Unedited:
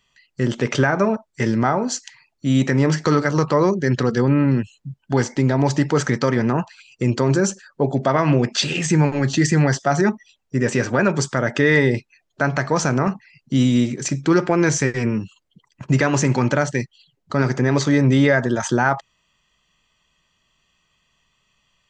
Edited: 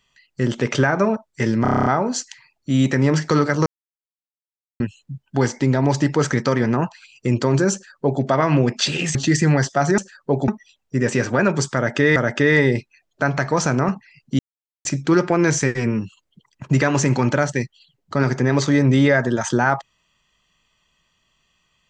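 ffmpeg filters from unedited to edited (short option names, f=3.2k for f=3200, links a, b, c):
-filter_complex "[0:a]asplit=17[a][b][c][d][e][f][g][h][i][j][k][l][m][n][o][p][q];[a]atrim=end=1.652[r];[b]atrim=start=1.618:end=1.652[s];[c]atrim=start=1.618:end=1.652[t];[d]atrim=start=1.618:end=1.652[u];[e]atrim=start=1.618:end=1.652[v];[f]atrim=start=1.618:end=1.652[w];[g]atrim=start=1.618:end=1.652[x];[h]atrim=start=1.618:end=1.652[y];[i]atrim=start=1.618:end=3.42,asetpts=PTS-STARTPTS,afade=t=out:st=1.798:d=0.004:c=hsin[z];[j]atrim=start=3.42:end=4.56,asetpts=PTS-STARTPTS,volume=0[aa];[k]atrim=start=4.56:end=8.912,asetpts=PTS-STARTPTS,afade=t=in:d=0.004:c=hsin[ab];[l]atrim=start=9.248:end=10.082[ac];[m]atrim=start=7.488:end=7.992[ad];[n]atrim=start=10.078:end=11.762[ae];[o]atrim=start=11.348:end=13.58,asetpts=PTS-STARTPTS,afade=t=out:st=2.228:d=0.004:c=hsin[af];[p]atrim=start=13.58:end=14.04,asetpts=PTS-STARTPTS,volume=0[ag];[q]atrim=start=14.04,asetpts=PTS-STARTPTS,afade=t=in:d=0.004:c=hsin[ah];[r][s]acrossfade=d=0.004:c1=hsin:c2=hsin[ai];[ai][t]acrossfade=d=0.004:c1=hsin:c2=hsin[aj];[aj][u]acrossfade=d=0.004:c1=hsin:c2=hsin[ak];[ak][v]acrossfade=d=0.004:c1=hsin:c2=hsin[al];[al][w]acrossfade=d=0.004:c1=hsin:c2=hsin[am];[am][x]acrossfade=d=0.004:c1=hsin:c2=hsin[an];[an][y]acrossfade=d=0.004:c1=hsin:c2=hsin[ao];[z][aa][ab]concat=n=3:v=0:a=1[ap];[ao][ap]acrossfade=d=0.004:c1=hsin:c2=hsin[aq];[aq][ac]acrossfade=d=0.004:c1=hsin:c2=hsin[ar];[ar][ad]acrossfade=d=0.004:c1=hsin:c2=hsin[as];[as][ae]acrossfade=d=0.004:c1=hsin:c2=hsin[at];[af][ag][ah]concat=n=3:v=0:a=1[au];[at][au]acrossfade=d=0.004:c1=hsin:c2=hsin"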